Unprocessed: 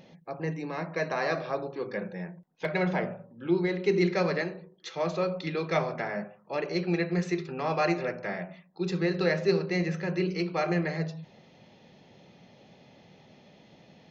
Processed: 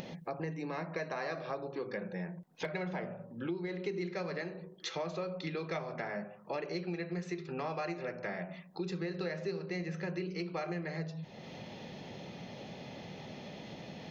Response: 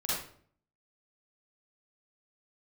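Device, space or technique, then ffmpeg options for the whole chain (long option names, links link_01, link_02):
upward and downward compression: -af "acompressor=mode=upward:threshold=-42dB:ratio=2.5,acompressor=threshold=-39dB:ratio=6,volume=3.5dB"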